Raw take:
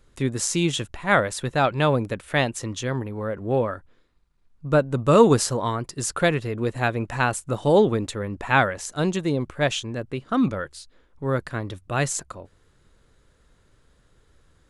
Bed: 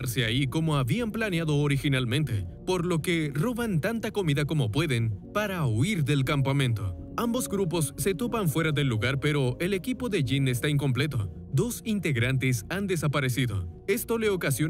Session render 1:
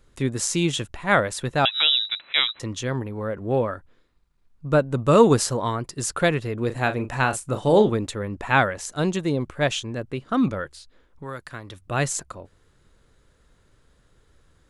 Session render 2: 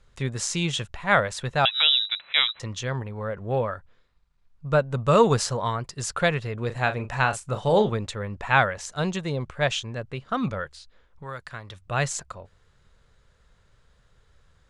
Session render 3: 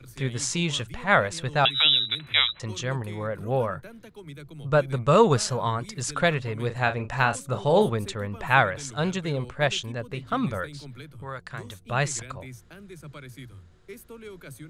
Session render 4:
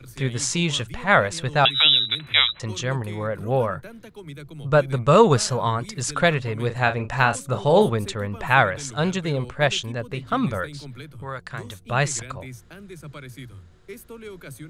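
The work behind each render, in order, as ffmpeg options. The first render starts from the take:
-filter_complex "[0:a]asettb=1/sr,asplit=3[a][b][c];[a]atrim=end=1.654[d];[b]atrim=start=1.65:end=2.6,asetpts=PTS-STARTPTS,afade=t=in:d=0.004:c=qsin,afade=t=out:st=0.946:d=0.004:c=qsin,lowpass=f=3.4k:t=q:w=0.5098,lowpass=f=3.4k:t=q:w=0.6013,lowpass=f=3.4k:t=q:w=0.9,lowpass=f=3.4k:t=q:w=2.563,afreqshift=-4000[e];[c]atrim=start=2.596[f];[d][e]acrossfade=d=0.004:c1=hsin:c2=qsin[g];[g][f]acrossfade=d=0.004:c1=qsin:c2=hsin,asettb=1/sr,asplit=3[h][i][j];[h]atrim=end=6.664[k];[i]atrim=start=6.66:end=7.9,asetpts=PTS-STARTPTS,afade=t=in:d=0.004:c=qsin,afade=t=out:st=1.236:d=0.004:c=qsin,asplit=2[l][m];[m]adelay=38,volume=-10dB[n];[l][n]amix=inputs=2:normalize=0,atrim=end_sample=54684[o];[j]atrim=start=7.896[p];[k][o]acrossfade=d=0.004:c1=hsin:c2=qsin[q];[q][p]acrossfade=d=0.004:c1=qsin:c2=hsin,asettb=1/sr,asplit=3[r][s][t];[r]atrim=end=10.724[u];[s]atrim=start=10.72:end=11.8,asetpts=PTS-STARTPTS,afade=t=in:d=0.004:c=qsin,afade=t=out:st=1.076:d=0.004:c=qsin,acrossover=split=800|4700[v][w][x];[v]acompressor=threshold=-38dB:ratio=4[y];[w]acompressor=threshold=-35dB:ratio=4[z];[x]acompressor=threshold=-48dB:ratio=4[aa];[y][z][aa]amix=inputs=3:normalize=0[ab];[t]atrim=start=11.796[ac];[u][ab]acrossfade=d=0.004:c1=hsin:c2=qsin[ad];[ad][ac]acrossfade=d=0.004:c1=qsin:c2=hsin"
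-af "lowpass=7k,equalizer=f=300:w=1.9:g=-12"
-filter_complex "[1:a]volume=-16.5dB[a];[0:a][a]amix=inputs=2:normalize=0"
-af "volume=3.5dB,alimiter=limit=-3dB:level=0:latency=1"

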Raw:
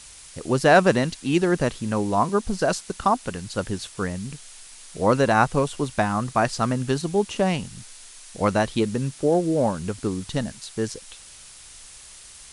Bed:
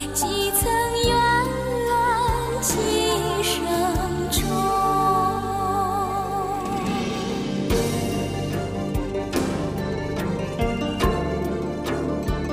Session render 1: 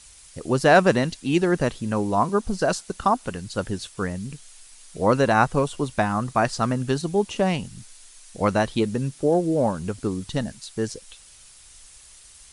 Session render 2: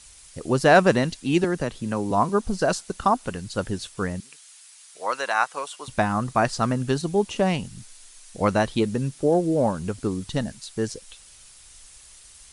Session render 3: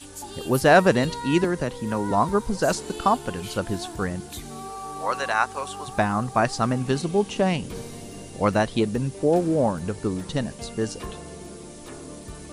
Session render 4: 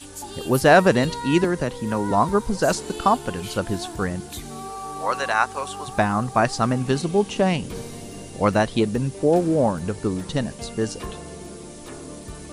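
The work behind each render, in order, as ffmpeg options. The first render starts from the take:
-af "afftdn=nr=6:nf=-45"
-filter_complex "[0:a]asettb=1/sr,asplit=3[a][b][c];[a]atrim=end=1.444[d];[b]atrim=start=1.44:end=2.11,asetpts=PTS-STARTPTS,afade=t=in:d=0.004:c=qsin,afade=t=out:st=0.666:d=0.004:c=qsin,acrossover=split=180|3400[e][f][g];[e]acompressor=threshold=-33dB:ratio=4[h];[f]acompressor=threshold=-23dB:ratio=4[i];[g]acompressor=threshold=-44dB:ratio=4[j];[h][i][j]amix=inputs=3:normalize=0[k];[c]atrim=start=2.106[l];[d][k]acrossfade=d=0.004:c1=hsin:c2=qsin[m];[m][l]acrossfade=d=0.004:c1=qsin:c2=hsin,asettb=1/sr,asplit=3[n][o][p];[n]atrim=end=4.204[q];[o]atrim=start=4.2:end=5.88,asetpts=PTS-STARTPTS,afade=t=in:d=0.004:c=qsin,afade=t=out:st=1.676:d=0.004:c=qsin,highpass=950[r];[p]atrim=start=5.876[s];[q][r]acrossfade=d=0.004:c1=hsin:c2=qsin[t];[t][s]acrossfade=d=0.004:c1=qsin:c2=hsin"
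-filter_complex "[1:a]volume=-15dB[a];[0:a][a]amix=inputs=2:normalize=0"
-af "volume=2dB,alimiter=limit=-2dB:level=0:latency=1"

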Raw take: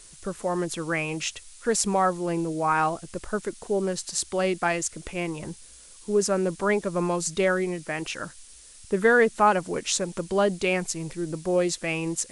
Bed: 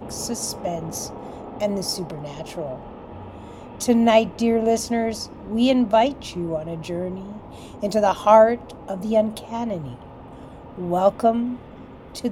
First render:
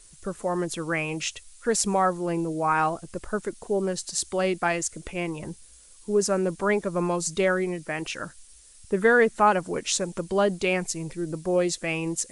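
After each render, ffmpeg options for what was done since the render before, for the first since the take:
-af "afftdn=nr=6:nf=-49"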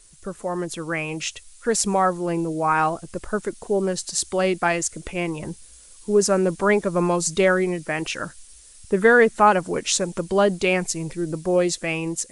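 -af "dynaudnorm=f=490:g=5:m=5dB"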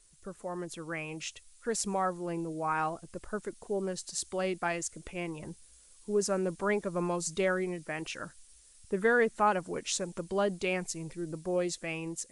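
-af "volume=-11dB"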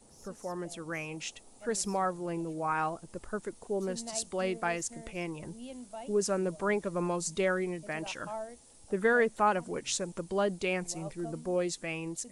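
-filter_complex "[1:a]volume=-27dB[a];[0:a][a]amix=inputs=2:normalize=0"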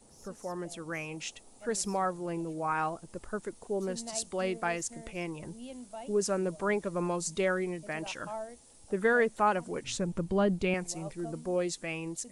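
-filter_complex "[0:a]asettb=1/sr,asplit=3[a][b][c];[a]atrim=end=9.844[d];[b]atrim=start=9.84:end=10.74,asetpts=PTS-STARTPTS,afade=t=in:d=0.004:c=qsin,afade=t=out:st=0.896:d=0.004:c=qsin,bass=f=250:g=11,treble=f=4k:g=-6[e];[c]atrim=start=10.736[f];[d][e]acrossfade=d=0.004:c1=hsin:c2=qsin[g];[g][f]acrossfade=d=0.004:c1=qsin:c2=hsin"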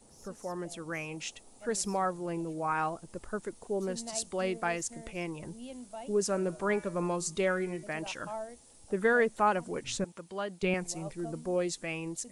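-filter_complex "[0:a]asettb=1/sr,asplit=3[a][b][c];[a]atrim=end=6.244[d];[b]atrim=start=6.24:end=7.84,asetpts=PTS-STARTPTS,afade=t=in:d=0.004:c=qsin,afade=t=out:st=1.596:d=0.004:c=qsin,bandreject=f=121.3:t=h:w=4,bandreject=f=242.6:t=h:w=4,bandreject=f=363.9:t=h:w=4,bandreject=f=485.2:t=h:w=4,bandreject=f=606.5:t=h:w=4,bandreject=f=727.8:t=h:w=4,bandreject=f=849.1:t=h:w=4,bandreject=f=970.4:t=h:w=4,bandreject=f=1.0917k:t=h:w=4,bandreject=f=1.213k:t=h:w=4,bandreject=f=1.3343k:t=h:w=4,bandreject=f=1.4556k:t=h:w=4,bandreject=f=1.5769k:t=h:w=4,bandreject=f=1.6982k:t=h:w=4,bandreject=f=1.8195k:t=h:w=4,bandreject=f=1.9408k:t=h:w=4,bandreject=f=2.0621k:t=h:w=4,bandreject=f=2.1834k:t=h:w=4,bandreject=f=2.3047k:t=h:w=4,bandreject=f=2.426k:t=h:w=4,bandreject=f=2.5473k:t=h:w=4,bandreject=f=2.6686k:t=h:w=4,bandreject=f=2.7899k:t=h:w=4,bandreject=f=2.9112k:t=h:w=4,bandreject=f=3.0325k:t=h:w=4,bandreject=f=3.1538k:t=h:w=4,bandreject=f=3.2751k:t=h:w=4,bandreject=f=3.3964k:t=h:w=4[e];[c]atrim=start=7.836[f];[d][e]acrossfade=d=0.004:c1=hsin:c2=qsin[g];[g][f]acrossfade=d=0.004:c1=qsin:c2=hsin,asettb=1/sr,asplit=3[h][i][j];[h]atrim=end=10.044[k];[i]atrim=start=10.04:end=10.63,asetpts=PTS-STARTPTS,afade=t=in:d=0.004:c=qsin,afade=t=out:st=0.586:d=0.004:c=qsin,highpass=f=1.3k:p=1[l];[j]atrim=start=10.626[m];[k][l]acrossfade=d=0.004:c1=hsin:c2=qsin[n];[n][m]acrossfade=d=0.004:c1=qsin:c2=hsin"

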